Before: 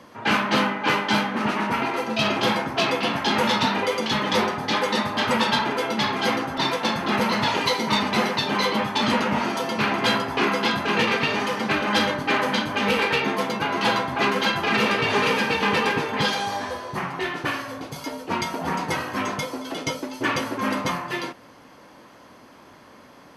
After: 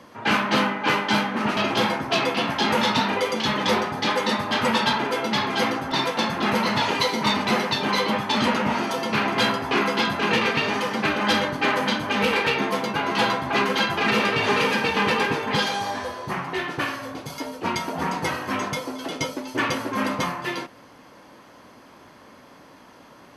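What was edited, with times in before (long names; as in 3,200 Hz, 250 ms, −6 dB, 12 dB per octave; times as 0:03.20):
0:01.57–0:02.23: remove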